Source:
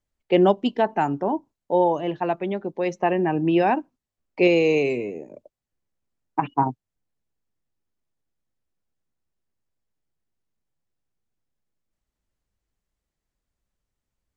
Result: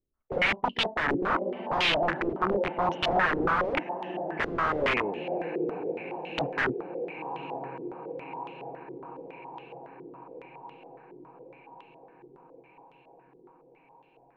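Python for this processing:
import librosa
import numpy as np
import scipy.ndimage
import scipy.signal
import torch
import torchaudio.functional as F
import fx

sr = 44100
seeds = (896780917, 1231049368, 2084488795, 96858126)

y = fx.echo_diffused(x, sr, ms=979, feedback_pct=67, wet_db=-14)
y = (np.mod(10.0 ** (20.0 / 20.0) * y + 1.0, 2.0) - 1.0) / 10.0 ** (20.0 / 20.0)
y = fx.filter_held_lowpass(y, sr, hz=7.2, low_hz=380.0, high_hz=3100.0)
y = y * librosa.db_to_amplitude(-3.5)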